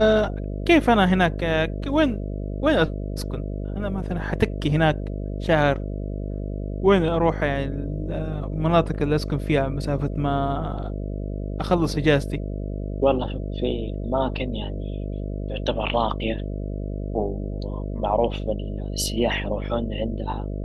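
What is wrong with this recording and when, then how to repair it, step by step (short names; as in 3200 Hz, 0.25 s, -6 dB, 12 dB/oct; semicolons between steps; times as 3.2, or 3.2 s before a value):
buzz 50 Hz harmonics 13 -29 dBFS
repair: de-hum 50 Hz, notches 13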